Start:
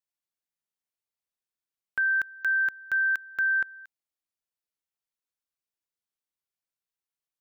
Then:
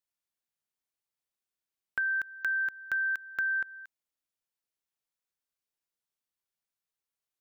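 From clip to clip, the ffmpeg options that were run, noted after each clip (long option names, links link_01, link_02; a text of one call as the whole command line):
ffmpeg -i in.wav -af "acompressor=threshold=-28dB:ratio=6" out.wav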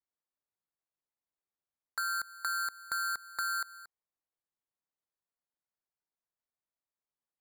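ffmpeg -i in.wav -af "bandpass=frequency=2000:width_type=q:width=2.4:csg=0,acrusher=samples=15:mix=1:aa=0.000001" out.wav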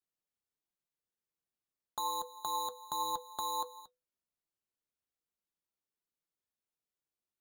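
ffmpeg -i in.wav -af "aeval=exprs='0.0631*(cos(1*acos(clip(val(0)/0.0631,-1,1)))-cos(1*PI/2))+0.00224*(cos(6*acos(clip(val(0)/0.0631,-1,1)))-cos(6*PI/2))':channel_layout=same,flanger=delay=5.5:depth=1.5:regen=64:speed=1.3:shape=triangular,afreqshift=-500,volume=2dB" out.wav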